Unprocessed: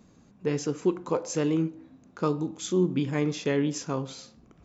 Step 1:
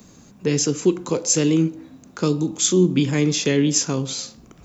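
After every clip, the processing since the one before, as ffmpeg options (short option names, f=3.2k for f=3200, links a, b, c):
-filter_complex "[0:a]acrossover=split=120|470|2000[a][b][c][d];[c]acompressor=threshold=-43dB:ratio=6[e];[a][b][e][d]amix=inputs=4:normalize=0,crystalizer=i=2.5:c=0,volume=8.5dB"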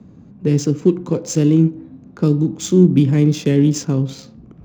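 -af "equalizer=f=130:w=0.31:g=14.5,adynamicsmooth=sensitivity=3:basefreq=2.5k,volume=-6dB"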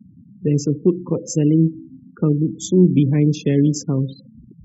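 -af "afftfilt=real='re*gte(hypot(re,im),0.0398)':imag='im*gte(hypot(re,im),0.0398)':win_size=1024:overlap=0.75,volume=-2dB"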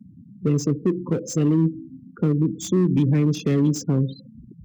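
-filter_complex "[0:a]acrossover=split=400[a][b];[a]alimiter=limit=-13dB:level=0:latency=1:release=96[c];[b]asoftclip=type=hard:threshold=-28.5dB[d];[c][d]amix=inputs=2:normalize=0"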